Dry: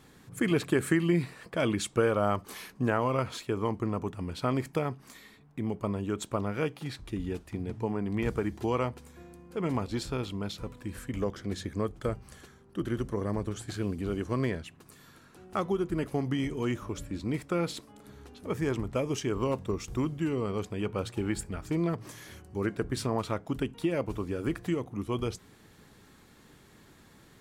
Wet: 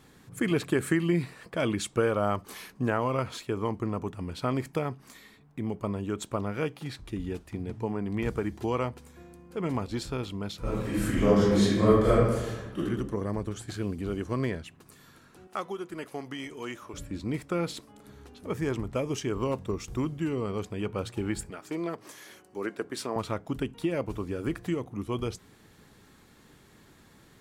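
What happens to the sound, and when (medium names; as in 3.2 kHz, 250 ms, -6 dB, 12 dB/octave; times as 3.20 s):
10.61–12.78 s: reverb throw, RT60 1.2 s, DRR -11.5 dB
15.47–16.94 s: high-pass 710 Hz 6 dB/octave
21.50–23.16 s: high-pass 310 Hz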